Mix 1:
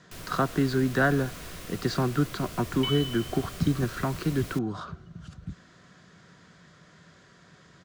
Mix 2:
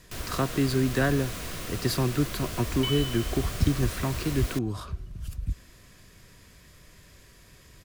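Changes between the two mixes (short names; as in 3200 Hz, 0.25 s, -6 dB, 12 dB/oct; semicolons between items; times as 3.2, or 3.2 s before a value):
speech: remove speaker cabinet 140–6200 Hz, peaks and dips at 170 Hz +9 dB, 750 Hz +5 dB, 1400 Hz +9 dB, 2500 Hz -7 dB, 5100 Hz -5 dB; first sound +5.5 dB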